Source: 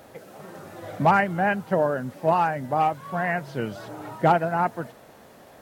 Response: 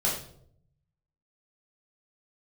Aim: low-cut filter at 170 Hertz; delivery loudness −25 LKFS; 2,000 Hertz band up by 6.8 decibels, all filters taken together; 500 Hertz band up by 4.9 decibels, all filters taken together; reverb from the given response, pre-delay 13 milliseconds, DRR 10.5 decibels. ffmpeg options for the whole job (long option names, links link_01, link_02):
-filter_complex "[0:a]highpass=170,equalizer=frequency=500:width_type=o:gain=6,equalizer=frequency=2000:width_type=o:gain=8.5,asplit=2[link_01][link_02];[1:a]atrim=start_sample=2205,adelay=13[link_03];[link_02][link_03]afir=irnorm=-1:irlink=0,volume=-20dB[link_04];[link_01][link_04]amix=inputs=2:normalize=0,volume=-5.5dB"